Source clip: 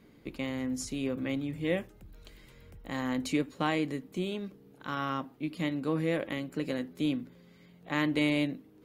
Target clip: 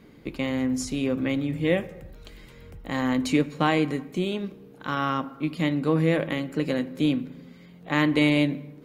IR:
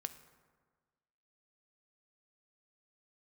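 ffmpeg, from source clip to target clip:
-filter_complex "[0:a]asplit=2[s0][s1];[1:a]atrim=start_sample=2205,afade=t=out:st=0.43:d=0.01,atrim=end_sample=19404,highshelf=f=8600:g=-10[s2];[s1][s2]afir=irnorm=-1:irlink=0,volume=1.68[s3];[s0][s3]amix=inputs=2:normalize=0"

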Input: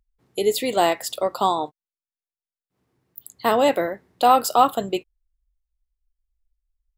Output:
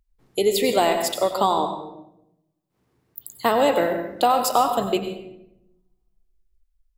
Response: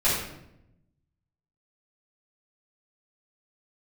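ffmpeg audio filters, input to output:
-filter_complex "[0:a]acompressor=threshold=0.141:ratio=6,asplit=2[s0][s1];[1:a]atrim=start_sample=2205,adelay=87[s2];[s1][s2]afir=irnorm=-1:irlink=0,volume=0.0944[s3];[s0][s3]amix=inputs=2:normalize=0,volume=1.33"

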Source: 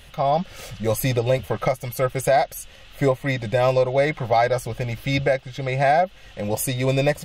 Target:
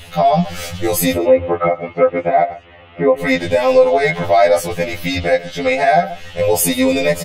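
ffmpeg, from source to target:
-filter_complex "[0:a]asettb=1/sr,asplit=3[s0][s1][s2];[s0]atrim=end=1.154[s3];[s1]atrim=start=1.15:end=3.19,asetpts=PTS-STARTPTS,afade=t=in:d=0.004:c=qsin,afade=t=out:st=2.036:d=0.004:c=qsin,highpass=110,equalizer=f=190:t=q:w=4:g=-7,equalizer=f=320:t=q:w=4:g=7,equalizer=f=1600:t=q:w=4:g=-7,lowpass=f=2200:w=0.5412,lowpass=f=2200:w=1.3066[s4];[s2]atrim=start=3.186[s5];[s3][s4]acrossfade=d=0.004:c1=hsin:c2=qsin[s6];[s6][s5]acrossfade=d=0.004:c1=qsin:c2=hsin,aecho=1:1:133:0.0891,alimiter=level_in=5.31:limit=0.891:release=50:level=0:latency=1,afftfilt=real='re*2*eq(mod(b,4),0)':imag='im*2*eq(mod(b,4),0)':win_size=2048:overlap=0.75,volume=0.841"

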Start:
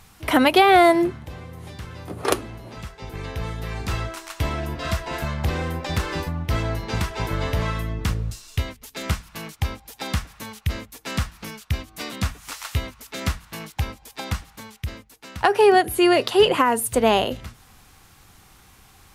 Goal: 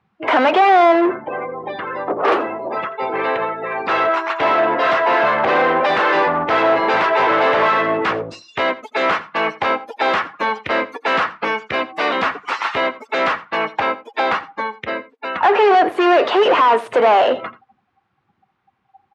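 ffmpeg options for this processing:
-filter_complex "[0:a]asplit=3[s0][s1][s2];[s0]afade=t=out:st=3.36:d=0.02[s3];[s1]agate=range=0.501:threshold=0.0501:ratio=16:detection=peak,afade=t=in:st=3.36:d=0.02,afade=t=out:st=3.97:d=0.02[s4];[s2]afade=t=in:st=3.97:d=0.02[s5];[s3][s4][s5]amix=inputs=3:normalize=0,afftdn=nr=35:nf=-41,dynaudnorm=f=510:g=13:m=1.68,asplit=2[s6][s7];[s7]highpass=f=720:p=1,volume=44.7,asoftclip=type=tanh:threshold=0.75[s8];[s6][s8]amix=inputs=2:normalize=0,lowpass=f=1000:p=1,volume=0.501,highpass=420,lowpass=3100,aecho=1:1:85:0.126"

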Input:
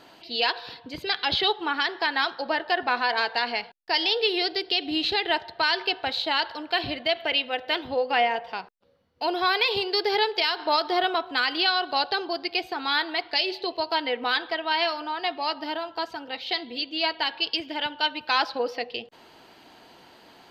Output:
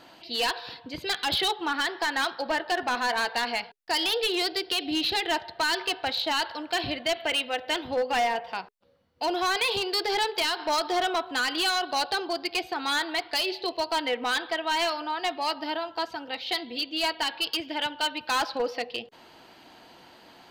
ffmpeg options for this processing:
-af "bandreject=f=420:w=12,asoftclip=type=hard:threshold=0.0891"

